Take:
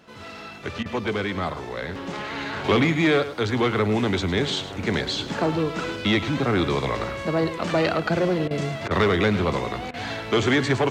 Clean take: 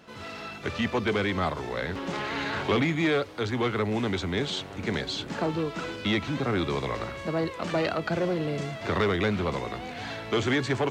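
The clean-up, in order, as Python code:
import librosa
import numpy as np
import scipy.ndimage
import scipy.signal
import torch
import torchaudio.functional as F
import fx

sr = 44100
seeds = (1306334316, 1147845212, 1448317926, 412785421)

y = fx.fix_interpolate(x, sr, at_s=(0.83, 8.48, 8.88, 9.91), length_ms=26.0)
y = fx.fix_echo_inverse(y, sr, delay_ms=105, level_db=-13.0)
y = fx.gain(y, sr, db=fx.steps((0.0, 0.0), (2.64, -5.0)))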